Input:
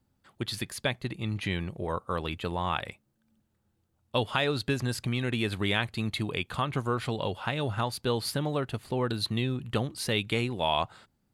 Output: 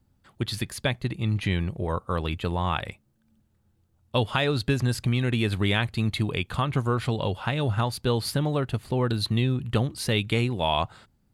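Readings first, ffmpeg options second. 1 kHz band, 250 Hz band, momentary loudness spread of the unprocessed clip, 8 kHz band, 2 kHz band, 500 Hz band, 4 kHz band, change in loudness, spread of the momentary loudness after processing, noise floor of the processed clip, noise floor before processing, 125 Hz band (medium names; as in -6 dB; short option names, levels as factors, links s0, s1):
+2.0 dB, +4.5 dB, 6 LU, +2.0 dB, +2.0 dB, +3.0 dB, +2.0 dB, +4.0 dB, 5 LU, -67 dBFS, -74 dBFS, +7.0 dB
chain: -af "lowshelf=f=140:g=9,volume=1.26"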